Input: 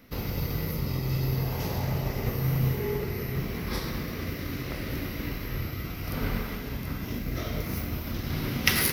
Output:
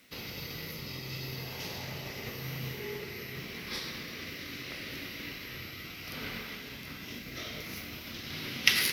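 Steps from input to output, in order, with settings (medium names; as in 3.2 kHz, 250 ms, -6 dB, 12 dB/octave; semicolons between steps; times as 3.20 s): frequency weighting D; bit crusher 9-bit; trim -9 dB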